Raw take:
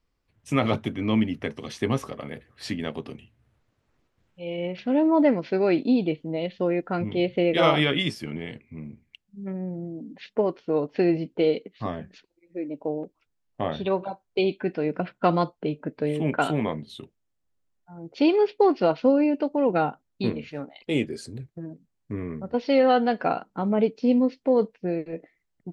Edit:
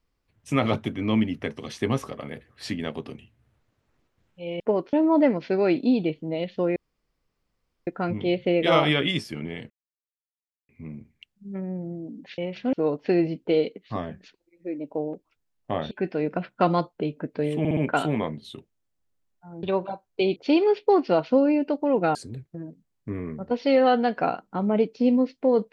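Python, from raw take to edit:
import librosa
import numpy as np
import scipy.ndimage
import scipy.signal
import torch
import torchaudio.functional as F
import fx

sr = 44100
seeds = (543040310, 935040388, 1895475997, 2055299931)

y = fx.edit(x, sr, fx.swap(start_s=4.6, length_s=0.35, other_s=10.3, other_length_s=0.33),
    fx.insert_room_tone(at_s=6.78, length_s=1.11),
    fx.insert_silence(at_s=8.61, length_s=0.99),
    fx.move(start_s=13.81, length_s=0.73, to_s=18.08),
    fx.stutter(start_s=16.22, slice_s=0.06, count=4),
    fx.cut(start_s=19.87, length_s=1.31), tone=tone)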